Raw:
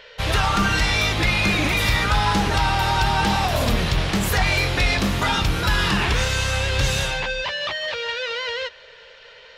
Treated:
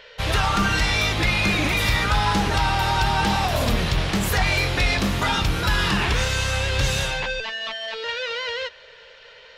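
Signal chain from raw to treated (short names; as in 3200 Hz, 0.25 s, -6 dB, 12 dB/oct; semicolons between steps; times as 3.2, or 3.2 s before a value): 7.4–8.04 robotiser 223 Hz; gain -1 dB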